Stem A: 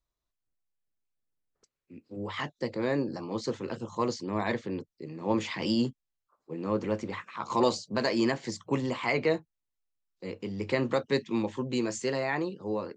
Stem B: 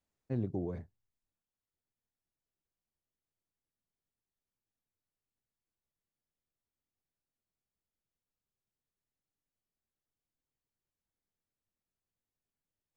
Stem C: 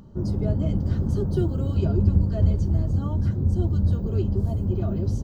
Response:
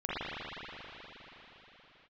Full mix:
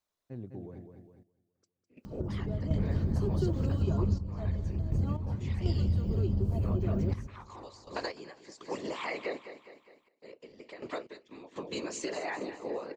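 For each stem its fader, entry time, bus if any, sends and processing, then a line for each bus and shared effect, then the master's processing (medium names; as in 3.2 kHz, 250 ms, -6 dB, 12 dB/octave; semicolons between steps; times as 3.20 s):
+2.5 dB, 0.00 s, no send, echo send -12.5 dB, high-pass 330 Hz 24 dB/octave; compression 5:1, threshold -36 dBFS, peak gain reduction 14 dB; whisper effect
-8.0 dB, 0.00 s, no send, echo send -6.5 dB, none
+2.5 dB, 2.05 s, no send, echo send -18.5 dB, none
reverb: none
echo: feedback delay 205 ms, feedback 50%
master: trance gate "xxxxx...x..x" 61 bpm -12 dB; compression 3:1, threshold -28 dBFS, peak gain reduction 13 dB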